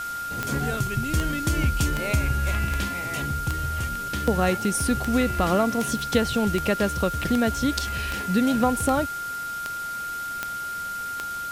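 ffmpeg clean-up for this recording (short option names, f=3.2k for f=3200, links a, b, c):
-af "adeclick=t=4,bandreject=f=1.4k:w=30,afwtdn=0.0089"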